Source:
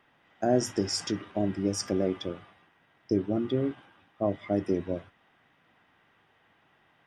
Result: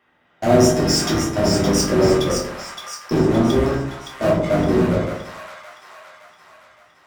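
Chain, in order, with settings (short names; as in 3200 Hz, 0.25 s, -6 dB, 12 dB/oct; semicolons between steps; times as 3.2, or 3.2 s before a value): octaver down 1 oct, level +1 dB; HPF 45 Hz 6 dB/oct; low shelf 79 Hz -10.5 dB; in parallel at -10 dB: fuzz box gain 37 dB, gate -45 dBFS; on the sum: split-band echo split 910 Hz, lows 82 ms, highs 0.567 s, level -5.5 dB; plate-style reverb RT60 0.56 s, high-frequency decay 0.5×, DRR -4 dB; gain -1.5 dB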